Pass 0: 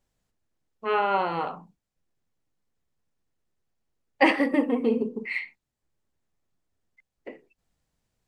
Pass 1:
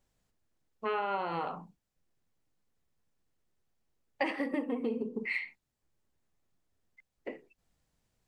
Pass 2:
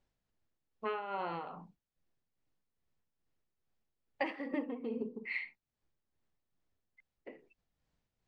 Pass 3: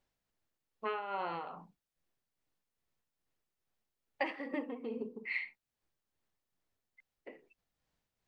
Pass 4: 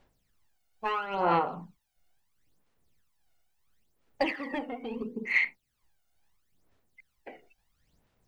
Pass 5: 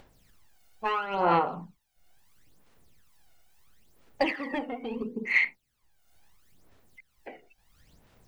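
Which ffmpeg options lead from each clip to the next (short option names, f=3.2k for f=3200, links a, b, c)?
-af "acompressor=threshold=-30dB:ratio=6"
-af "lowpass=5k,tremolo=f=2.4:d=0.54,volume=-2.5dB"
-af "lowshelf=f=330:g=-6.5,volume=1.5dB"
-filter_complex "[0:a]asplit=2[a][b];[b]asoftclip=type=tanh:threshold=-34dB,volume=-5dB[c];[a][c]amix=inputs=2:normalize=0,aphaser=in_gain=1:out_gain=1:delay=1.4:decay=0.7:speed=0.74:type=sinusoidal,volume=3dB"
-af "acompressor=mode=upward:threshold=-51dB:ratio=2.5,volume=2dB"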